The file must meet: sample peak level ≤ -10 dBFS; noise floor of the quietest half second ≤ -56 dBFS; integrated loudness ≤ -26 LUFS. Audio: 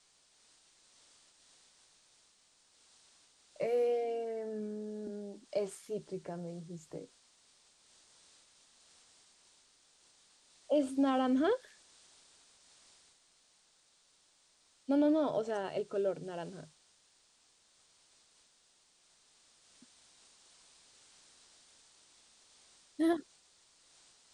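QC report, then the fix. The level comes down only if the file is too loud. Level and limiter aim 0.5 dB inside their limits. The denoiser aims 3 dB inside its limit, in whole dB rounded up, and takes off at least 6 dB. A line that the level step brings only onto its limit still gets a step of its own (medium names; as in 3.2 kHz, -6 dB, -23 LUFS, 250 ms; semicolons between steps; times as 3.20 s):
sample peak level -20.5 dBFS: pass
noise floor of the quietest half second -69 dBFS: pass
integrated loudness -35.0 LUFS: pass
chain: none needed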